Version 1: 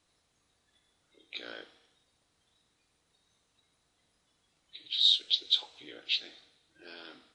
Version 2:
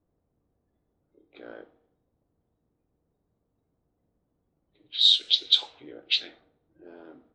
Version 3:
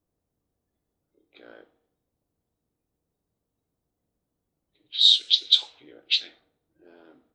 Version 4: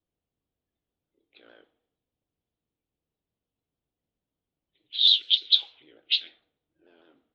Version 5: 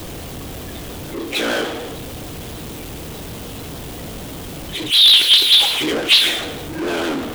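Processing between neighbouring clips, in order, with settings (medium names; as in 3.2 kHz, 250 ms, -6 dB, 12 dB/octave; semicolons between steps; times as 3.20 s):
level-controlled noise filter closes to 470 Hz, open at -25 dBFS; in parallel at +1 dB: gain riding
treble shelf 2.4 kHz +11.5 dB; trim -6 dB
resonant low-pass 3.2 kHz, resonance Q 2.9; vibrato with a chosen wave saw down 6.7 Hz, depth 100 cents; trim -7.5 dB
power-law waveshaper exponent 0.35; slew-rate limiter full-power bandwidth 1.1 kHz; trim +3 dB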